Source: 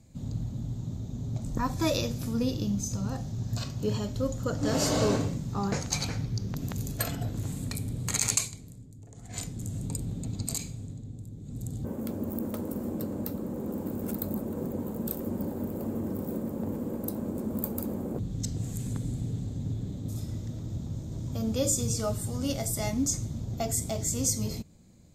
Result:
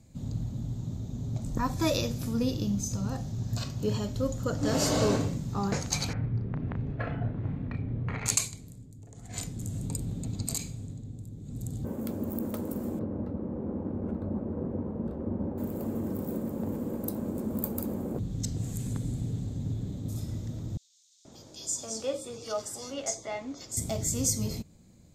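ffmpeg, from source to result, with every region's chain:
-filter_complex "[0:a]asettb=1/sr,asplit=3[a][b][c];[a]atrim=end=6.134[d];[b]atrim=start=6.13:end=8.26,asetpts=PTS-STARTPTS,afade=t=in:d=0.004:c=qsin,afade=t=out:st=2.126:d=0.004:c=qsin,lowpass=f=2.2k:w=0.5412,lowpass=f=2.2k:w=1.3066,asplit=2[e][f];[f]adelay=34,volume=-7dB[g];[e][g]amix=inputs=2:normalize=0,atrim=end_sample=93933[h];[c]atrim=start=8.256[i];[d][h]acrossfade=d=0.004:c1=hsin:c2=qsin[j];[j][i]acrossfade=d=0.004:c1=qsin:c2=hsin,asettb=1/sr,asplit=3[k][l][m];[k]atrim=end=12.994[n];[l]atrim=start=12.99:end=15.58,asetpts=PTS-STARTPTS,afade=t=in:d=0.004:c=qsin,afade=t=out:st=2.586:d=0.004:c=qsin,equalizer=f=76:w=2:g=7,aeval=exprs='sgn(val(0))*max(abs(val(0))-0.002,0)':c=same,lowpass=1.2k[o];[m]atrim=start=15.576[p];[n][o]acrossfade=d=0.004:c1=hsin:c2=qsin[q];[q][p]acrossfade=d=0.004:c1=qsin:c2=hsin,asettb=1/sr,asplit=3[r][s][t];[r]atrim=end=20.774[u];[s]atrim=start=20.77:end=23.77,asetpts=PTS-STARTPTS,afade=t=in:d=0.004:c=qsin,afade=t=out:st=2.996:d=0.004:c=qsin,acrossover=split=350 7900:gain=0.0708 1 0.112[v][w][x];[v][w][x]amix=inputs=3:normalize=0,acrossover=split=3600[y][z];[y]adelay=480[aa];[aa][z]amix=inputs=2:normalize=0,atrim=end_sample=132300[ab];[t]atrim=start=23.766[ac];[u][ab]acrossfade=d=0.004:c1=hsin:c2=qsin[ad];[ad][ac]acrossfade=d=0.004:c1=qsin:c2=hsin"

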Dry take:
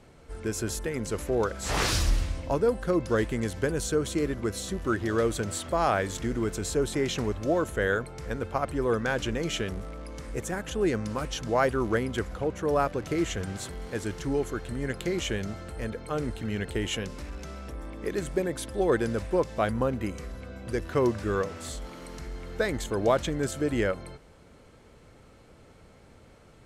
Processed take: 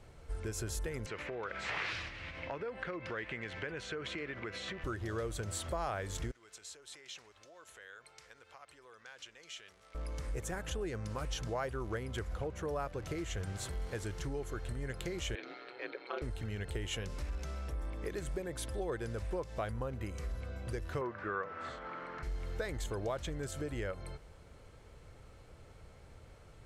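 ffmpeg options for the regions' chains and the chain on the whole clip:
-filter_complex "[0:a]asettb=1/sr,asplit=3[a][b][c];[a]atrim=end=1.064[d];[b]atrim=start=1.06:end=4.84,asetpts=PTS-STARTPTS,afade=t=in:d=0.004:c=qsin,afade=t=out:st=3.776:d=0.004:c=qsin,acompressor=threshold=-33dB:ratio=4:attack=3.2:release=140:knee=1:detection=peak,highpass=160,lowpass=3.5k,equalizer=f=2.2k:w=1:g=13.5[e];[c]atrim=start=4.836[f];[d][e]acrossfade=d=0.004:c1=hsin:c2=qsin[g];[g][f]acrossfade=d=0.004:c1=qsin:c2=hsin,asettb=1/sr,asplit=3[h][i][j];[h]atrim=end=6.314[k];[i]atrim=start=6.31:end=9.95,asetpts=PTS-STARTPTS,afade=t=in:d=0.004:c=qsin,afade=t=out:st=3.636:d=0.004:c=qsin,acompressor=threshold=-35dB:ratio=5:attack=3.2:release=140:knee=1:detection=peak,bandpass=f=5.6k:t=q:w=0.53,highshelf=f=7.3k:g=-8.5[l];[j]atrim=start=9.946[m];[k][l]acrossfade=d=0.004:c1=hsin:c2=qsin[n];[n][m]acrossfade=d=0.004:c1=qsin:c2=hsin,asettb=1/sr,asplit=3[o][p][q];[o]atrim=end=15.354[r];[p]atrim=start=15.35:end=16.22,asetpts=PTS-STARTPTS,afade=t=in:d=0.004:c=qsin,afade=t=out:st=0.866:d=0.004:c=qsin,aeval=exprs='val(0)*sin(2*PI*62*n/s)':c=same,highpass=f=320:w=0.5412,highpass=f=320:w=1.3066,equalizer=f=320:t=q:w=4:g=7,equalizer=f=590:t=q:w=4:g=-3,equalizer=f=1.5k:t=q:w=4:g=3,equalizer=f=2.3k:t=q:w=4:g=9,equalizer=f=4k:t=q:w=4:g=9,lowpass=f=4.2k:w=0.5412,lowpass=f=4.2k:w=1.3066[s];[q]atrim=start=16.216[t];[r][s]acrossfade=d=0.004:c1=hsin:c2=qsin[u];[u][t]acrossfade=d=0.004:c1=qsin:c2=hsin,asettb=1/sr,asplit=3[v][w][x];[v]atrim=end=21.014[y];[w]atrim=start=21.01:end=22.23,asetpts=PTS-STARTPTS,afade=t=in:d=0.004:c=qsin,afade=t=out:st=1.216:d=0.004:c=qsin,highpass=180,lowpass=2.3k,equalizer=f=1.4k:t=o:w=1.2:g=11[z];[x]atrim=start=22.226[aa];[y][z]acrossfade=d=0.004:c1=hsin:c2=qsin[ab];[ab][aa]acrossfade=d=0.004:c1=qsin:c2=hsin,lowshelf=f=160:g=7,acompressor=threshold=-30dB:ratio=4,equalizer=f=230:w=1.3:g=-8,volume=-3.5dB"

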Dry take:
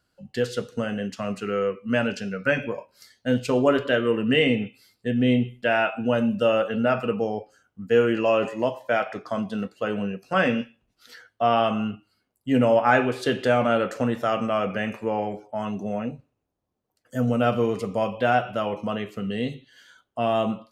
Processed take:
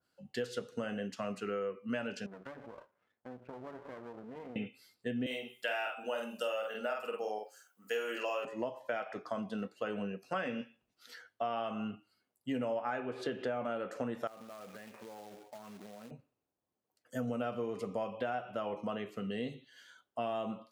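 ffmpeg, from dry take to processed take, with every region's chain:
-filter_complex "[0:a]asettb=1/sr,asplit=3[a][b][c];[a]atrim=end=2.264[d];[b]atrim=start=2.26:end=4.56,asetpts=PTS-STARTPTS,afade=t=in:d=0.004:c=qsin,afade=t=out:st=2.296:d=0.004:c=qsin,lowpass=f=1.3k:w=0.5412,lowpass=f=1.3k:w=1.3066,acompressor=threshold=-34dB:ratio=5:attack=3.2:release=140:knee=1:detection=peak,aeval=exprs='max(val(0),0)':c=same[e];[c]atrim=start=4.556[f];[d][e]acrossfade=d=0.004:c1=hsin:c2=qsin[g];[g][f]acrossfade=d=0.004:c1=qsin:c2=hsin,asettb=1/sr,asplit=3[h][i][j];[h]atrim=end=5.264[k];[i]atrim=start=5.26:end=8.45,asetpts=PTS-STARTPTS,afade=t=in:d=0.004:c=qsin,afade=t=out:st=3.186:d=0.004:c=qsin,highpass=530,aemphasis=mode=production:type=75fm,asplit=2[l][m];[m]adelay=47,volume=-2.5dB[n];[l][n]amix=inputs=2:normalize=0,atrim=end_sample=140679[o];[j]atrim=start=8.446[p];[k][o]acrossfade=d=0.004:c1=hsin:c2=qsin[q];[q][p]acrossfade=d=0.004:c1=qsin:c2=hsin,asettb=1/sr,asplit=3[r][s][t];[r]atrim=end=13.004[u];[s]atrim=start=13:end=13.65,asetpts=PTS-STARTPTS,afade=t=in:d=0.004:c=qsin,afade=t=out:st=0.646:d=0.004:c=qsin,lowpass=f=2.9k:p=1,acompressor=mode=upward:threshold=-27dB:ratio=2.5:attack=3.2:release=140:knee=2.83:detection=peak[v];[t]atrim=start=13.646[w];[u][v]acrossfade=d=0.004:c1=hsin:c2=qsin[x];[x][w]acrossfade=d=0.004:c1=qsin:c2=hsin,asettb=1/sr,asplit=3[y][z][aa];[y]atrim=end=14.274[ab];[z]atrim=start=14.27:end=16.11,asetpts=PTS-STARTPTS,afade=t=in:d=0.004:c=qsin,afade=t=out:st=1.836:d=0.004:c=qsin,lowpass=2.2k,acrusher=bits=2:mode=log:mix=0:aa=0.000001,acompressor=threshold=-38dB:ratio=12:attack=3.2:release=140:knee=1:detection=peak[ac];[aa]atrim=start=16.106[ad];[ab][ac]acrossfade=d=0.004:c1=hsin:c2=qsin[ae];[ae][ad]acrossfade=d=0.004:c1=qsin:c2=hsin,highpass=f=230:p=1,acompressor=threshold=-27dB:ratio=6,adynamicequalizer=threshold=0.00631:dfrequency=1600:dqfactor=0.7:tfrequency=1600:tqfactor=0.7:attack=5:release=100:ratio=0.375:range=3:mode=cutabove:tftype=highshelf,volume=-5.5dB"

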